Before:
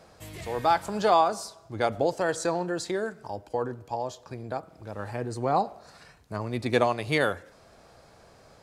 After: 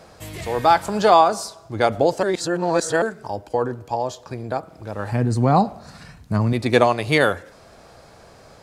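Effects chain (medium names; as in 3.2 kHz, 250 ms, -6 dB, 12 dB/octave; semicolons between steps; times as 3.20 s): 2.23–3.02 s: reverse; 5.12–6.53 s: resonant low shelf 290 Hz +7.5 dB, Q 1.5; trim +7.5 dB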